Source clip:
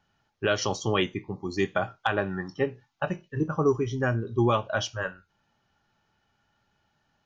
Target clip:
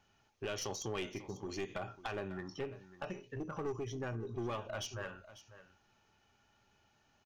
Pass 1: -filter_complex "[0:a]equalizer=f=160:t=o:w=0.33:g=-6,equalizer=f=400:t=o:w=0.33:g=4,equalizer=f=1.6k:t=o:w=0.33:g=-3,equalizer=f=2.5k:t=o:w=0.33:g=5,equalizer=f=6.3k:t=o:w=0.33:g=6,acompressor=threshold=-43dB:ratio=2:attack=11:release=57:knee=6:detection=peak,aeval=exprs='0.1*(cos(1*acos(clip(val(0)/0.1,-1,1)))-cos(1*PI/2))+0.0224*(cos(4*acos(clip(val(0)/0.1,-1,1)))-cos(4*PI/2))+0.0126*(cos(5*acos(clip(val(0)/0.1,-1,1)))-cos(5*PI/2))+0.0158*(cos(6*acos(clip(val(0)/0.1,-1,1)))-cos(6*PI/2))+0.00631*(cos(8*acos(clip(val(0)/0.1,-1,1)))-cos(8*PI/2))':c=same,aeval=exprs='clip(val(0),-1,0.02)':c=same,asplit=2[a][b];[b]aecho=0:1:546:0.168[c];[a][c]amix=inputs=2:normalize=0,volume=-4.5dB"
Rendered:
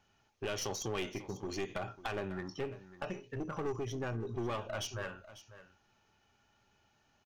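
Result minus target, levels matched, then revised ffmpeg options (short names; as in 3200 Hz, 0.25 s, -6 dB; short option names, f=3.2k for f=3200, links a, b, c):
compressor: peak gain reduction -3 dB
-filter_complex "[0:a]equalizer=f=160:t=o:w=0.33:g=-6,equalizer=f=400:t=o:w=0.33:g=4,equalizer=f=1.6k:t=o:w=0.33:g=-3,equalizer=f=2.5k:t=o:w=0.33:g=5,equalizer=f=6.3k:t=o:w=0.33:g=6,acompressor=threshold=-49.5dB:ratio=2:attack=11:release=57:knee=6:detection=peak,aeval=exprs='0.1*(cos(1*acos(clip(val(0)/0.1,-1,1)))-cos(1*PI/2))+0.0224*(cos(4*acos(clip(val(0)/0.1,-1,1)))-cos(4*PI/2))+0.0126*(cos(5*acos(clip(val(0)/0.1,-1,1)))-cos(5*PI/2))+0.0158*(cos(6*acos(clip(val(0)/0.1,-1,1)))-cos(6*PI/2))+0.00631*(cos(8*acos(clip(val(0)/0.1,-1,1)))-cos(8*PI/2))':c=same,aeval=exprs='clip(val(0),-1,0.02)':c=same,asplit=2[a][b];[b]aecho=0:1:546:0.168[c];[a][c]amix=inputs=2:normalize=0,volume=-4.5dB"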